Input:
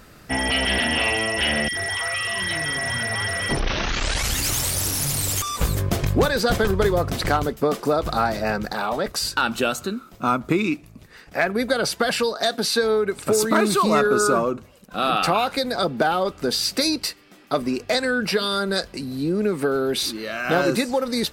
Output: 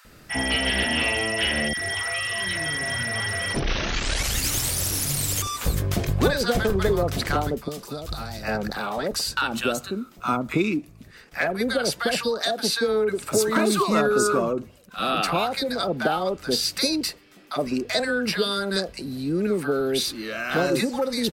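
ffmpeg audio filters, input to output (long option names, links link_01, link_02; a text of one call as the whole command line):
ffmpeg -i in.wav -filter_complex "[0:a]asettb=1/sr,asplit=3[link_01][link_02][link_03];[link_01]atrim=end=7.634[link_04];[link_02]atrim=start=7.63:end=8.43,asetpts=PTS-STARTPTS,afade=type=in:duration=0.004:curve=qsin,afade=type=out:start_time=0.796:duration=0.004:curve=qsin,acrossover=split=140|3000[link_05][link_06][link_07];[link_06]acompressor=threshold=-33dB:ratio=4[link_08];[link_05][link_08][link_07]amix=inputs=3:normalize=0[link_09];[link_03]atrim=start=8.426[link_10];[link_04][link_09]acrossfade=duration=0.004:curve1=hsin:curve2=qsin[link_11];[link_11][link_10]acrossfade=duration=0.004:curve1=qsin:curve2=hsin,acrossover=split=920[link_12][link_13];[link_12]adelay=50[link_14];[link_14][link_13]amix=inputs=2:normalize=0,volume=-1.5dB" out.wav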